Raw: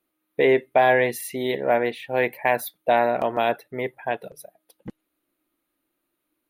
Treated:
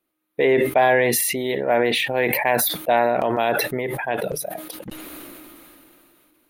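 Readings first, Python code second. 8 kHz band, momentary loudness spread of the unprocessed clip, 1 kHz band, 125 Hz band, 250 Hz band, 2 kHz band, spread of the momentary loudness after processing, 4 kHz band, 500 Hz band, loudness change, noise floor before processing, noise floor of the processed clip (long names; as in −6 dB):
+13.5 dB, 12 LU, +1.5 dB, +5.0 dB, +3.5 dB, +3.0 dB, 18 LU, +9.0 dB, +1.5 dB, +2.5 dB, −78 dBFS, −76 dBFS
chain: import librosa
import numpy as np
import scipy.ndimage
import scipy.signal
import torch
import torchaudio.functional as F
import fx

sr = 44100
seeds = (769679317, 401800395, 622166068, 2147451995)

y = fx.sustainer(x, sr, db_per_s=20.0)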